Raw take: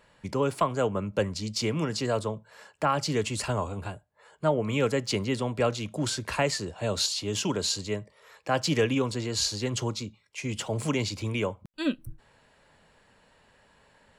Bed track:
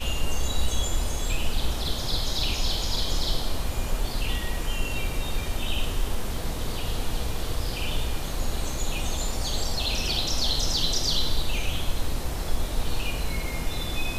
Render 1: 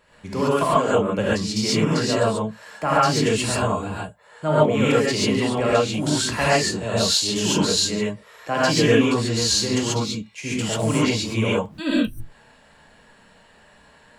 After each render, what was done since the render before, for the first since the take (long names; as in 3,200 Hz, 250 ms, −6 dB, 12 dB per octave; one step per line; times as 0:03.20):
reverb whose tail is shaped and stops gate 160 ms rising, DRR −8 dB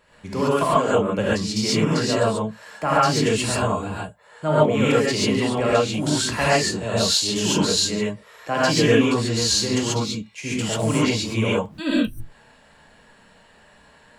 no processing that can be heard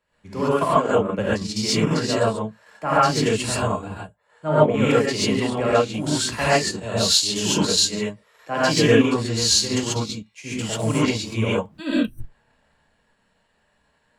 transient designer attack −1 dB, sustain −6 dB
multiband upward and downward expander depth 40%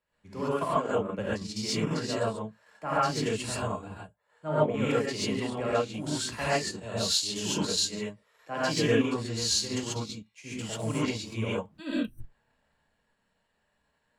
level −9 dB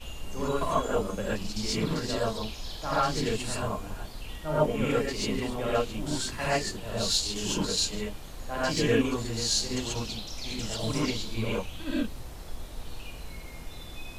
mix in bed track −12.5 dB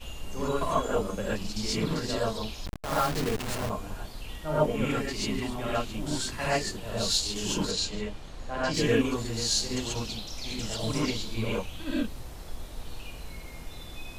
0:02.66–0:03.70: hold until the input has moved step −28.5 dBFS
0:04.85–0:05.94: parametric band 490 Hz −13.5 dB 0.23 octaves
0:07.71–0:08.74: high-frequency loss of the air 62 metres